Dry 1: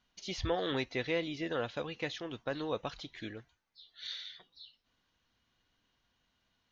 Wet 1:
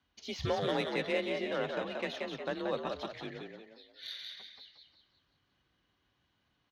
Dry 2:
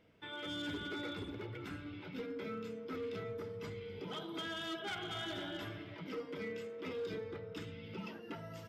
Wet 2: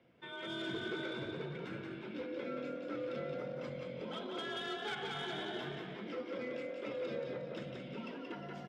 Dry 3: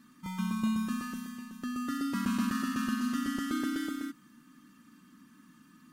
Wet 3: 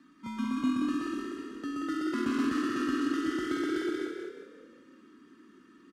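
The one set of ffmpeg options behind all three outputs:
-filter_complex "[0:a]asplit=6[a][b][c][d][e][f];[b]adelay=179,afreqshift=42,volume=-4dB[g];[c]adelay=358,afreqshift=84,volume=-11.5dB[h];[d]adelay=537,afreqshift=126,volume=-19.1dB[i];[e]adelay=716,afreqshift=168,volume=-26.6dB[j];[f]adelay=895,afreqshift=210,volume=-34.1dB[k];[a][g][h][i][j][k]amix=inputs=6:normalize=0,adynamicsmooth=sensitivity=7:basefreq=5.3k,afreqshift=35"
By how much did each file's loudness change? +1.5, +1.5, +1.5 LU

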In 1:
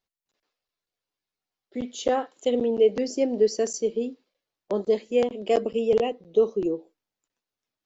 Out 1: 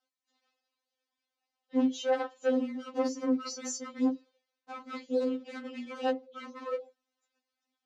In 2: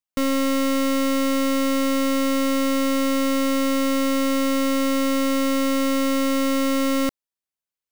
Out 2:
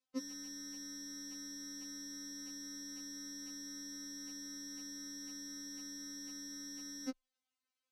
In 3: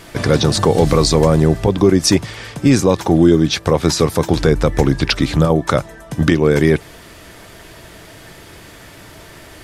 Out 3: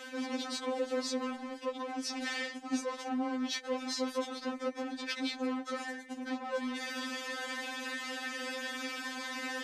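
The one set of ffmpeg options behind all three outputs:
-af "areverse,acompressor=threshold=-29dB:ratio=5,areverse,volume=34dB,asoftclip=hard,volume=-34dB,afreqshift=14,highpass=110,lowpass=6.1k,afftfilt=real='re*3.46*eq(mod(b,12),0)':imag='im*3.46*eq(mod(b,12),0)':win_size=2048:overlap=0.75,volume=5.5dB"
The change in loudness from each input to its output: -7.5, -23.5, -22.0 LU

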